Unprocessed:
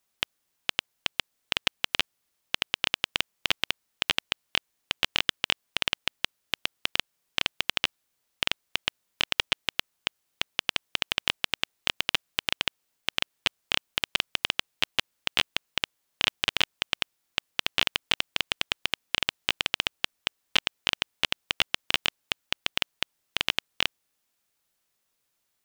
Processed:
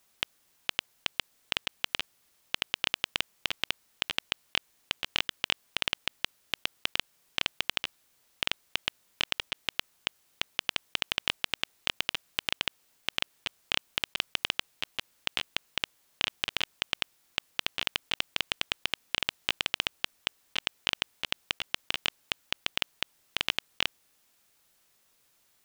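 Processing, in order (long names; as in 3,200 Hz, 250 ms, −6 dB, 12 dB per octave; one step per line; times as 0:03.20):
compressor whose output falls as the input rises −32 dBFS, ratio −1
level +2.5 dB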